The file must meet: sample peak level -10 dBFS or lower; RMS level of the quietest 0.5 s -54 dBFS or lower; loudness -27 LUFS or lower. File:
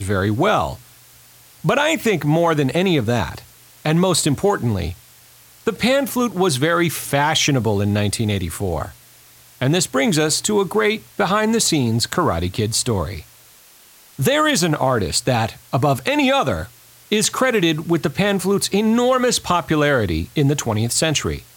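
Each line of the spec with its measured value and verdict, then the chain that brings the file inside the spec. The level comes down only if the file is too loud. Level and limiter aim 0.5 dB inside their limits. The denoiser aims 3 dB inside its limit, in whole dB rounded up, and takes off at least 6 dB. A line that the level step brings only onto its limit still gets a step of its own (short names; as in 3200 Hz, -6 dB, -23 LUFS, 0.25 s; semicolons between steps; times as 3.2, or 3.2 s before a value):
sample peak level -4.0 dBFS: fail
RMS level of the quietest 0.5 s -48 dBFS: fail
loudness -18.5 LUFS: fail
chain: gain -9 dB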